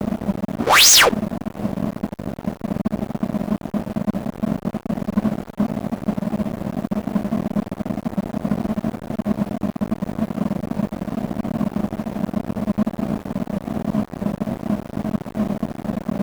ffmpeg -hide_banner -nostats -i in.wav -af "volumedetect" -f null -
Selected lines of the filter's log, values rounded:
mean_volume: -22.1 dB
max_volume: -6.7 dB